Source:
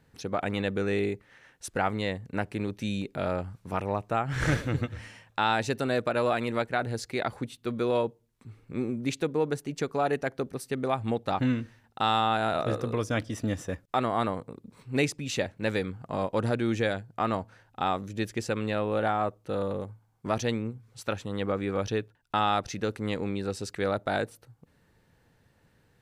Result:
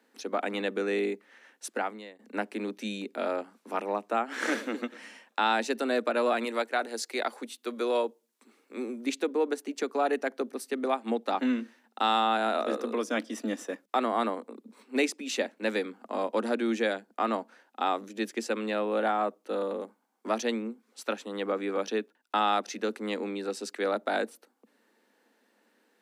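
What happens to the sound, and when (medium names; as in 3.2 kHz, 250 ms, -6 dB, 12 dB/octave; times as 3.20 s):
1.72–2.19 s: fade out quadratic, to -18 dB
6.44–9.06 s: tone controls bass -11 dB, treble +5 dB
whole clip: steep high-pass 210 Hz 96 dB/octave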